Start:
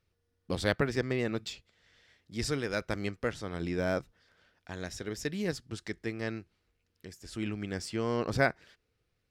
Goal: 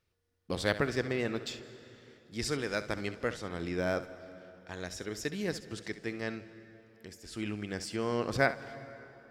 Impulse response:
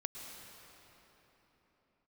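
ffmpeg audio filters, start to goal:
-filter_complex "[0:a]lowshelf=frequency=230:gain=-4.5,asplit=2[link_01][link_02];[1:a]atrim=start_sample=2205,asetrate=57330,aresample=44100,adelay=67[link_03];[link_02][link_03]afir=irnorm=-1:irlink=0,volume=-8.5dB[link_04];[link_01][link_04]amix=inputs=2:normalize=0"

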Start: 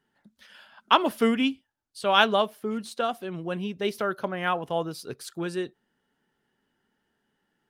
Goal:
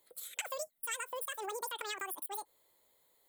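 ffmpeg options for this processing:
ffmpeg -i in.wav -af "aexciter=amount=10.4:drive=5.4:freq=3900,acompressor=threshold=-36dB:ratio=6,asetrate=103194,aresample=44100,volume=-1dB" out.wav

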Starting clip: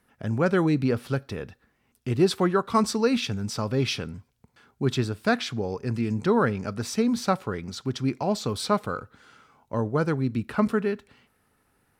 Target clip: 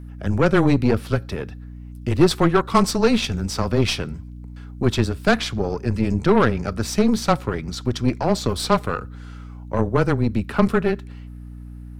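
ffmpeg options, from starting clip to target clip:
ffmpeg -i in.wav -af "afreqshift=-15,aeval=exprs='0.447*(cos(1*acos(clip(val(0)/0.447,-1,1)))-cos(1*PI/2))+0.0355*(cos(8*acos(clip(val(0)/0.447,-1,1)))-cos(8*PI/2))':channel_layout=same,aeval=exprs='val(0)+0.01*(sin(2*PI*60*n/s)+sin(2*PI*2*60*n/s)/2+sin(2*PI*3*60*n/s)/3+sin(2*PI*4*60*n/s)/4+sin(2*PI*5*60*n/s)/5)':channel_layout=same,volume=5dB" out.wav

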